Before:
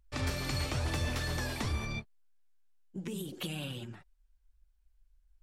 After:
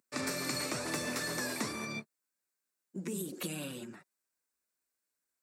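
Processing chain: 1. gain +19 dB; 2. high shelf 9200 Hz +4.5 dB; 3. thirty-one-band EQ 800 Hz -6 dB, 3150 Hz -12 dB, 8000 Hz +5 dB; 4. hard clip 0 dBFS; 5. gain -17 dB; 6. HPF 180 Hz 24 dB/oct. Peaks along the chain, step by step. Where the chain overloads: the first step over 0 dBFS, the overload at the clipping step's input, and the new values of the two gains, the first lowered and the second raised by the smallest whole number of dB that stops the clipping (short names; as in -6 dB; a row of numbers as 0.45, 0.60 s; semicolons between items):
-2.5, -2.5, -2.5, -2.5, -19.5, -21.5 dBFS; no overload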